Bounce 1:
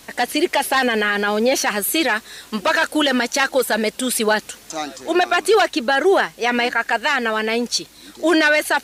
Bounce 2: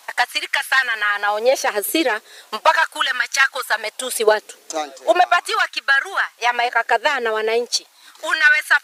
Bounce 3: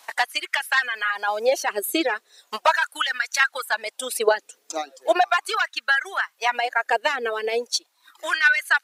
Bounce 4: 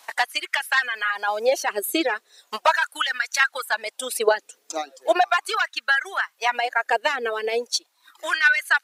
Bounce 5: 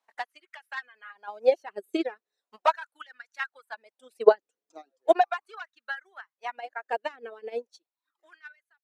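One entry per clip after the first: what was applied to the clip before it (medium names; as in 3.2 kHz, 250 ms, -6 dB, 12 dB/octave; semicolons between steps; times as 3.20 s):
transient shaper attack +7 dB, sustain -3 dB; LFO high-pass sine 0.38 Hz 410–1500 Hz; trim -3.5 dB
reverb removal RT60 1.3 s; trim -4 dB
no audible change
fade out at the end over 0.91 s; tilt EQ -3 dB/octave; upward expansion 2.5:1, over -30 dBFS; trim +1 dB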